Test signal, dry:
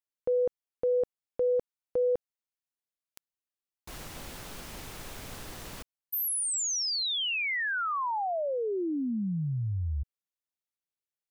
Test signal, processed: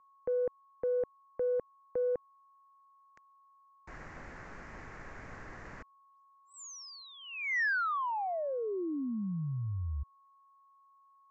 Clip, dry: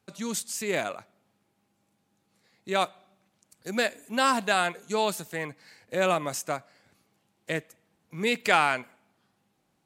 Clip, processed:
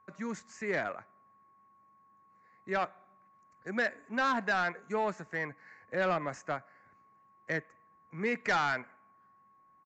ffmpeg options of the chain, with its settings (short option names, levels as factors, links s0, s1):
-filter_complex "[0:a]highshelf=f=2500:t=q:w=3:g=-10.5,aeval=exprs='val(0)+0.00141*sin(2*PI*1100*n/s)':c=same,acrossover=split=350[s0][s1];[s1]asoftclip=type=tanh:threshold=0.106[s2];[s0][s2]amix=inputs=2:normalize=0,aresample=16000,aresample=44100,volume=0.596"